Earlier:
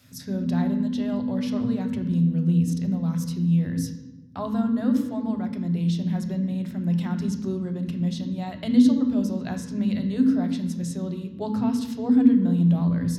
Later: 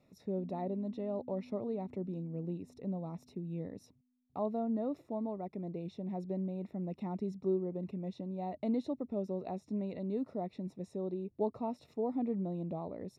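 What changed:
speech: add moving average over 28 samples
reverb: off

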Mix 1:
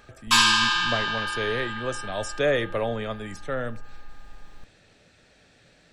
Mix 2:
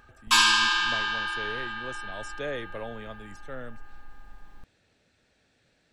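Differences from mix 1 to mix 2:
speech −7.5 dB
reverb: off

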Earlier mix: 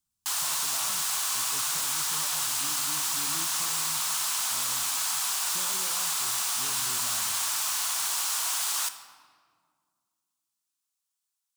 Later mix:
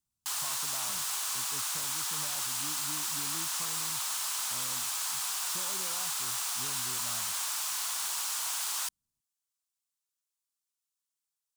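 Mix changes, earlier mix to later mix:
background −4.0 dB
reverb: off

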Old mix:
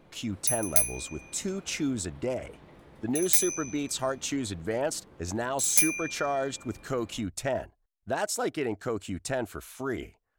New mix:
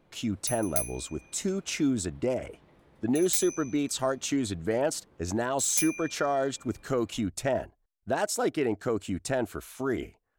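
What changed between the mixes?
speech: add parametric band 290 Hz +3.5 dB 2.3 octaves
background −7.0 dB

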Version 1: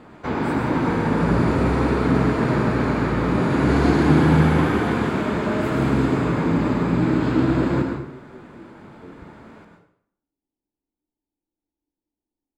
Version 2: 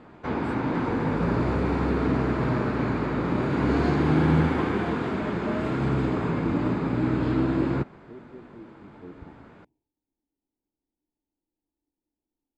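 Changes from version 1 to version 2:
background: send off
master: add high-frequency loss of the air 71 metres

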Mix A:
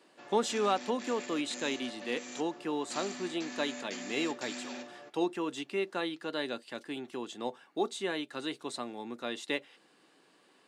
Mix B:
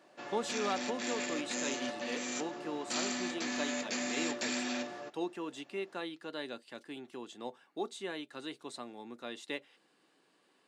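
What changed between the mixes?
speech −6.0 dB
background +6.5 dB

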